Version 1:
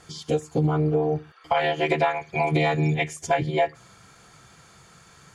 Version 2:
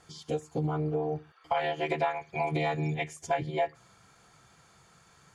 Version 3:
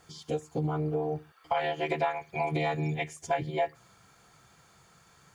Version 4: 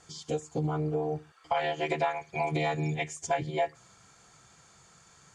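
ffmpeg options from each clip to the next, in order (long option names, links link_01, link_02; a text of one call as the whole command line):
ffmpeg -i in.wav -af "equalizer=frequency=830:width=1.5:gain=3,volume=-8.5dB" out.wav
ffmpeg -i in.wav -af "acrusher=bits=11:mix=0:aa=0.000001" out.wav
ffmpeg -i in.wav -af "lowpass=frequency=7500:width_type=q:width=2.2" out.wav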